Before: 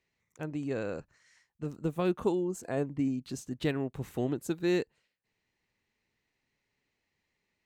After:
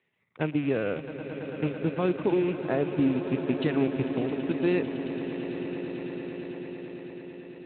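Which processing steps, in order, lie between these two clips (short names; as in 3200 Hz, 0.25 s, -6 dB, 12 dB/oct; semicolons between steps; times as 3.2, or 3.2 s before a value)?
rattling part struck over -43 dBFS, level -37 dBFS; HPF 110 Hz 12 dB/oct; transient shaper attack +5 dB, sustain -8 dB; 4.03–4.58 compressor 2:1, threshold -40 dBFS, peak gain reduction 10 dB; limiter -24 dBFS, peak gain reduction 11 dB; swelling echo 0.111 s, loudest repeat 8, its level -14.5 dB; gain +6.5 dB; Speex 15 kbps 8000 Hz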